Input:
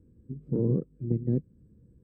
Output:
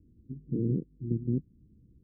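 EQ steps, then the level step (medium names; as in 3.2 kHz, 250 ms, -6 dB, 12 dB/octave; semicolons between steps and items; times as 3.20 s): four-pole ladder low-pass 390 Hz, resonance 40%; bass shelf 76 Hz +10 dB; +1.5 dB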